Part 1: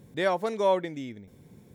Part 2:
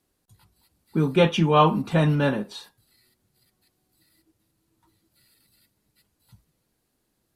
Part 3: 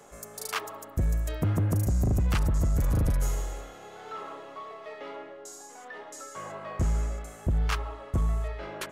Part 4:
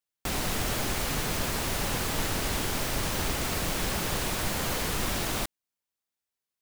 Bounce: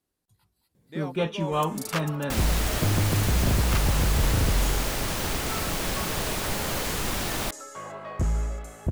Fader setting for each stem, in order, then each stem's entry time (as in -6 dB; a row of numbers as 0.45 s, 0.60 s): -12.0 dB, -8.5 dB, +1.0 dB, +1.0 dB; 0.75 s, 0.00 s, 1.40 s, 2.05 s